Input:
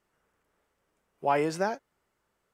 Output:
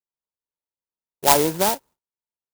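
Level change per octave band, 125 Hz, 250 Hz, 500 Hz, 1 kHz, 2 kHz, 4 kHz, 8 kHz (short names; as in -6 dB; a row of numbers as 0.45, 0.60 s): +7.5, +7.0, +6.5, +8.5, +6.0, +19.5, +23.5 dB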